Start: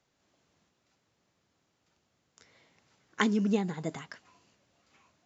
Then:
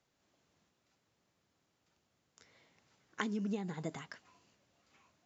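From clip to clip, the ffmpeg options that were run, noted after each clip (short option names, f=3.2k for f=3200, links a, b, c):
-af "acompressor=threshold=-30dB:ratio=6,volume=-3.5dB"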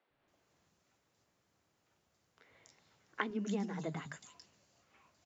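-filter_complex "[0:a]acrossover=split=230|3600[a][b][c];[a]adelay=100[d];[c]adelay=280[e];[d][b][e]amix=inputs=3:normalize=0,volume=2dB"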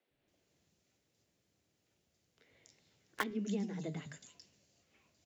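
-filter_complex "[0:a]flanger=delay=8.8:depth=6:regen=-89:speed=0.57:shape=triangular,acrossover=split=140|720|1700[a][b][c][d];[c]acrusher=bits=6:mix=0:aa=0.000001[e];[a][b][e][d]amix=inputs=4:normalize=0,volume=4.5dB"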